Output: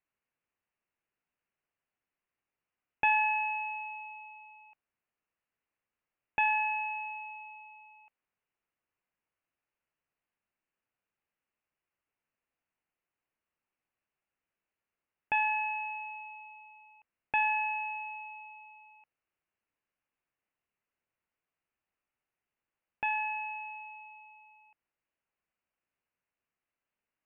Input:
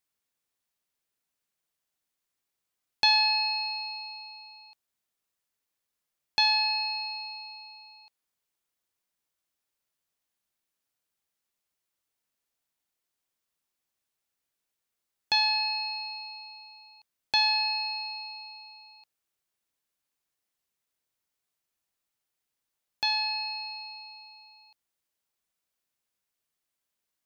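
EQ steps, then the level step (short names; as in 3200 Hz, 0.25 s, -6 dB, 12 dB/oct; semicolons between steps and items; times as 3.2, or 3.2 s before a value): steep low-pass 2900 Hz 96 dB/oct; 0.0 dB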